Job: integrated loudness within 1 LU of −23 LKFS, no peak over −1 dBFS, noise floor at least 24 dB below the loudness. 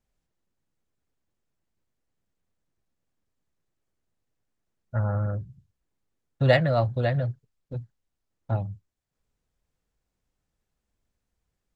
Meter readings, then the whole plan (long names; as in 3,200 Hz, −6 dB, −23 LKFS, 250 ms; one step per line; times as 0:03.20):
integrated loudness −26.0 LKFS; sample peak −6.0 dBFS; target loudness −23.0 LKFS
→ level +3 dB